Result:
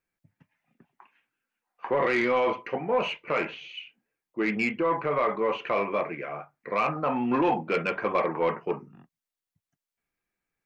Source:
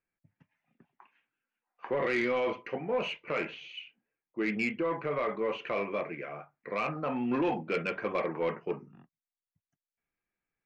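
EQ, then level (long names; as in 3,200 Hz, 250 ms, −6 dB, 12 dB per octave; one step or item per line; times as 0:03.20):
dynamic equaliser 950 Hz, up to +6 dB, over −47 dBFS, Q 1.4
+3.5 dB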